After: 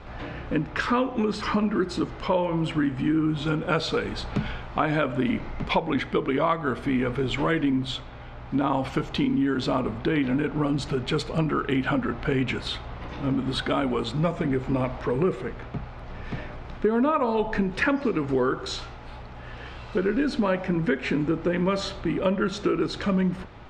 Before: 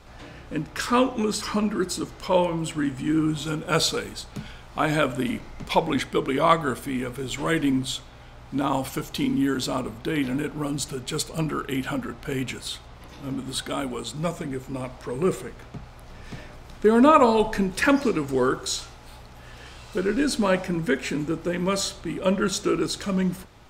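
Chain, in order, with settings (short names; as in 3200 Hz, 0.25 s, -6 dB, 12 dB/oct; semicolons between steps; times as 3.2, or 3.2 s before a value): in parallel at -2 dB: vocal rider; on the sum: LPF 2800 Hz 12 dB/oct; compressor 4:1, threshold -21 dBFS, peak gain reduction 11.5 dB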